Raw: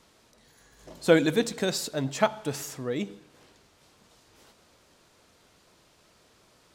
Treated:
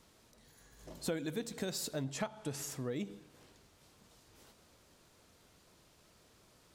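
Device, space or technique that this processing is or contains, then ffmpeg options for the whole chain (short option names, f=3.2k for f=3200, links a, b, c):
ASMR close-microphone chain: -filter_complex "[0:a]lowshelf=f=240:g=6,acompressor=threshold=-29dB:ratio=5,highshelf=f=9.7k:g=8,asettb=1/sr,asplit=3[a][b][c];[a]atrim=end=2.044[d];[b]atrim=start=2.04:end=2.71,asetpts=PTS-STARTPTS,afade=t=in:d=0.004:c=qsin,afade=t=out:st=0.666:d=0.004:c=qsin,lowpass=f=12k:w=0.5412,lowpass=f=12k:w=1.3066[e];[c]atrim=start=2.706[f];[d][e]acrossfade=d=0.004:c1=hsin:c2=qsin[g];[g][f]acrossfade=d=0.004:c1=qsin:c2=hsin,volume=-6dB"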